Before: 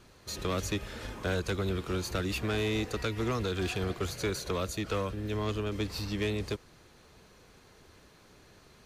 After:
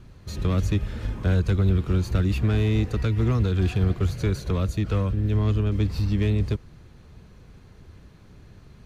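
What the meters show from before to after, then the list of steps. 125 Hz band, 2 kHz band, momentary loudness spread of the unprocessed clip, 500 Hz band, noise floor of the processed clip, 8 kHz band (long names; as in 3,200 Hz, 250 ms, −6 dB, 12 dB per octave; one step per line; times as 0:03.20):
+14.0 dB, −0.5 dB, 5 LU, +2.0 dB, −50 dBFS, can't be measured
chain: bass and treble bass +15 dB, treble −5 dB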